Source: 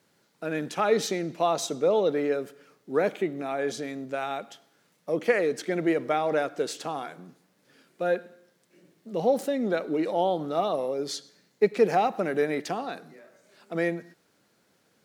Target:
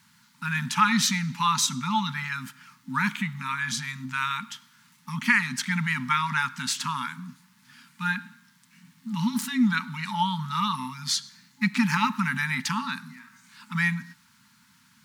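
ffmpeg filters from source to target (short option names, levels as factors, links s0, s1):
-af "afftfilt=real='re*(1-between(b*sr/4096,260,860))':imag='im*(1-between(b*sr/4096,260,860))':win_size=4096:overlap=0.75,volume=2.82"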